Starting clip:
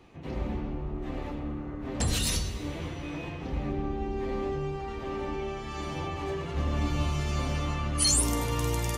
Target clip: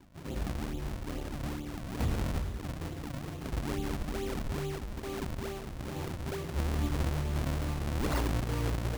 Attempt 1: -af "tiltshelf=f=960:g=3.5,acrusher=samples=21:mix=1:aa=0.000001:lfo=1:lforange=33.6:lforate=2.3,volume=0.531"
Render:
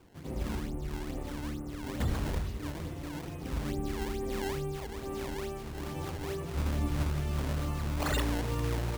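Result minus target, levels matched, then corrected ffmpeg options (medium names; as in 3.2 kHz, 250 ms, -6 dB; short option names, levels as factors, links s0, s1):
decimation with a swept rate: distortion -6 dB
-af "tiltshelf=f=960:g=3.5,acrusher=samples=61:mix=1:aa=0.000001:lfo=1:lforange=97.6:lforate=2.3,volume=0.531"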